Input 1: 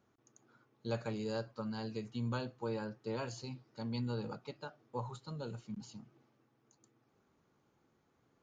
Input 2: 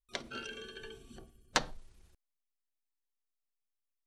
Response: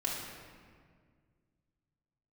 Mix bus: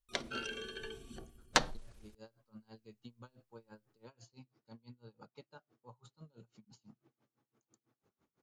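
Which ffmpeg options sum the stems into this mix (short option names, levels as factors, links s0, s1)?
-filter_complex "[0:a]acompressor=threshold=0.00447:ratio=5,aeval=exprs='val(0)*pow(10,-27*(0.5-0.5*cos(2*PI*6*n/s))/20)':c=same,adelay=900,volume=0.841[s0];[1:a]volume=1.26[s1];[s0][s1]amix=inputs=2:normalize=0"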